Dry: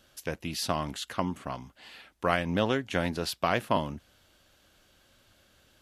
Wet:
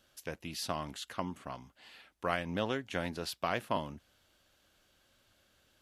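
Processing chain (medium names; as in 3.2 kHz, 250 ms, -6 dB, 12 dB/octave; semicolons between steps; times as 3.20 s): bass shelf 330 Hz -2.5 dB; trim -6 dB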